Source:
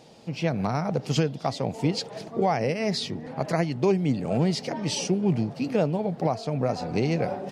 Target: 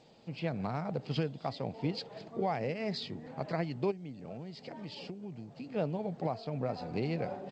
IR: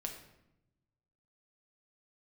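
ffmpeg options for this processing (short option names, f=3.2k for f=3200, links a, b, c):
-filter_complex "[0:a]aresample=11025,aresample=44100,asplit=3[a][b][c];[a]afade=t=out:st=3.9:d=0.02[d];[b]acompressor=threshold=-31dB:ratio=16,afade=t=in:st=3.9:d=0.02,afade=t=out:st=5.75:d=0.02[e];[c]afade=t=in:st=5.75:d=0.02[f];[d][e][f]amix=inputs=3:normalize=0,volume=-9dB" -ar 16000 -c:a g722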